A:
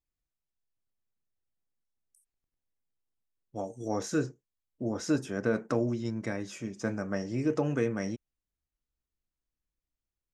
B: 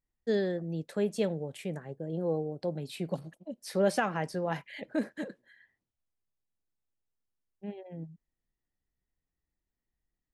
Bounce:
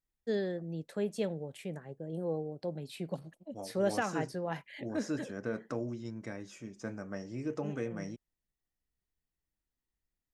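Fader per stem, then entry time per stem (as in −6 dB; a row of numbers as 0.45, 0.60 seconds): −8.0, −4.0 decibels; 0.00, 0.00 seconds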